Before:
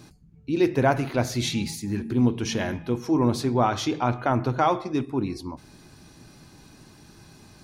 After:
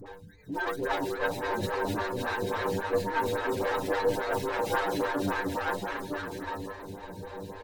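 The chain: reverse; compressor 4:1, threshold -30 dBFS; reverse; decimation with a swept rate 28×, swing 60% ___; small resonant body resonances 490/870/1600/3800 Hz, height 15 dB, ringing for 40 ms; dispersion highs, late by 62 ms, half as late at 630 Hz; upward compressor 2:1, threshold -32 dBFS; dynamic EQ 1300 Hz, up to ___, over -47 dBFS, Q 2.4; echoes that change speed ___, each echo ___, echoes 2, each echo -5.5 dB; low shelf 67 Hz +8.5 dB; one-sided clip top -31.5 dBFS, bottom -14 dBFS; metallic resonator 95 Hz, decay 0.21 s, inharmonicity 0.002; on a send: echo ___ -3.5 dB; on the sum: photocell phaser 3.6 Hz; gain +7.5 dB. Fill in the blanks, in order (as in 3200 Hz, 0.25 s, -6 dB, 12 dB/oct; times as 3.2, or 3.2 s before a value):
2.3 Hz, +7 dB, 0.465 s, +1 st, 0.956 s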